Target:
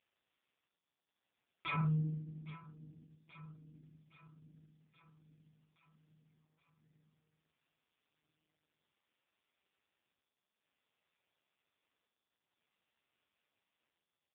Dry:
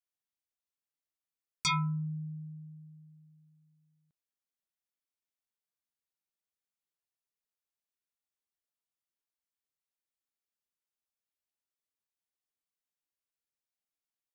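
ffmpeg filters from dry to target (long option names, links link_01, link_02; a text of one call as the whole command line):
ffmpeg -i in.wav -af "asetnsamples=nb_out_samples=441:pad=0,asendcmd='1.81 highpass f 160',highpass=69,equalizer=frequency=2500:width=2.9:gain=4,acompressor=threshold=-33dB:ratio=12,alimiter=level_in=7.5dB:limit=-24dB:level=0:latency=1:release=445,volume=-7.5dB,asoftclip=type=tanh:threshold=-35.5dB,tremolo=f=0.53:d=0.88,aecho=1:1:822|1644|2466|3288|4110|4932:0.158|0.0919|0.0533|0.0309|0.0179|0.0104,volume=11dB" -ar 8000 -c:a libopencore_amrnb -b:a 5150 out.amr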